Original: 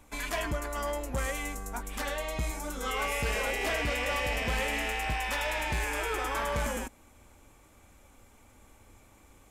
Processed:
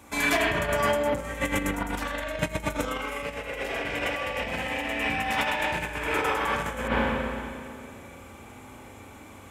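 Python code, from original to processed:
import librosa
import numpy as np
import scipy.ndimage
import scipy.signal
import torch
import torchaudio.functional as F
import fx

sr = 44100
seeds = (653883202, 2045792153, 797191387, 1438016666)

y = fx.echo_wet_lowpass(x, sr, ms=136, feedback_pct=75, hz=410.0, wet_db=-12.5)
y = fx.rev_spring(y, sr, rt60_s=2.1, pass_ms=(35, 41), chirp_ms=40, drr_db=-6.0)
y = fx.over_compress(y, sr, threshold_db=-28.0, ratio=-0.5)
y = scipy.signal.sosfilt(scipy.signal.butter(2, 86.0, 'highpass', fs=sr, output='sos'), y)
y = y * 10.0 ** (2.5 / 20.0)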